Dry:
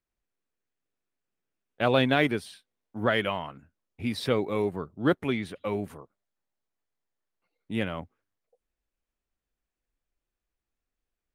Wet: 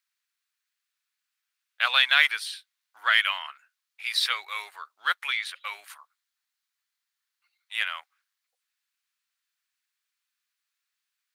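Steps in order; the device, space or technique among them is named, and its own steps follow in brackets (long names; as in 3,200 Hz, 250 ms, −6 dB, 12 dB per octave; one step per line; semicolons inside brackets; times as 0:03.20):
headphones lying on a table (high-pass filter 1,300 Hz 24 dB per octave; parametric band 4,200 Hz +4.5 dB 0.55 octaves)
0:05.84–0:07.74: high-pass filter 610 Hz 24 dB per octave
level +8.5 dB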